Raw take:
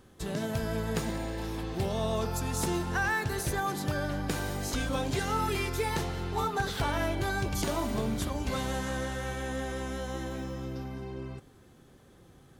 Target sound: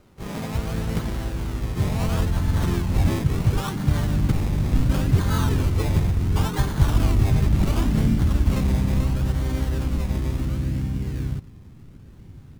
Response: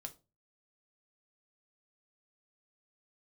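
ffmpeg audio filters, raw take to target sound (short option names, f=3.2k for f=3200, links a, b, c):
-filter_complex "[0:a]acrusher=samples=24:mix=1:aa=0.000001:lfo=1:lforange=14.4:lforate=0.71,asplit=3[a][b][c];[b]asetrate=33038,aresample=44100,atempo=1.33484,volume=-5dB[d];[c]asetrate=52444,aresample=44100,atempo=0.840896,volume=-6dB[e];[a][d][e]amix=inputs=3:normalize=0,asubboost=boost=5.5:cutoff=220"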